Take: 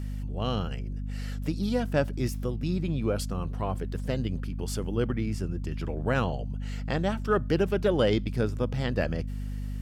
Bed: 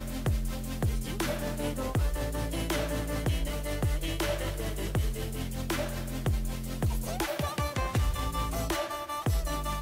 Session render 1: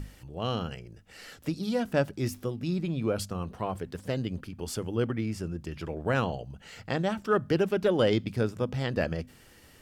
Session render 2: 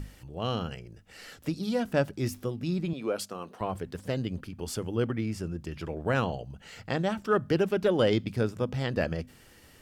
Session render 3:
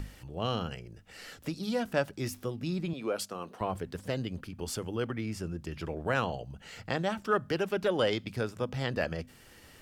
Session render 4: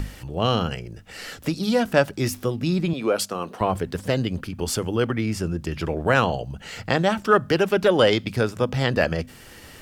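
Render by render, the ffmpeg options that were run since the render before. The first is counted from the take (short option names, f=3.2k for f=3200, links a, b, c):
-af "bandreject=f=50:t=h:w=6,bandreject=f=100:t=h:w=6,bandreject=f=150:t=h:w=6,bandreject=f=200:t=h:w=6,bandreject=f=250:t=h:w=6"
-filter_complex "[0:a]asettb=1/sr,asplit=3[a][b][c];[a]atrim=end=2.934[d];[b]atrim=start=2.93:end=3.61,asetpts=PTS-STARTPTS,afade=t=in:d=0.004:c=qsin,afade=t=out:st=0.676:d=0.004:c=qsin,highpass=310[e];[c]atrim=start=3.606[f];[d][e]acrossfade=d=0.004:c1=hsin:c2=qsin[g];[g][f]acrossfade=d=0.004:c1=qsin:c2=hsin"
-filter_complex "[0:a]acrossover=split=550|5400[a][b][c];[a]alimiter=level_in=2.5dB:limit=-24dB:level=0:latency=1:release=447,volume=-2.5dB[d];[b]acompressor=mode=upward:threshold=-53dB:ratio=2.5[e];[d][e][c]amix=inputs=3:normalize=0"
-af "volume=10.5dB"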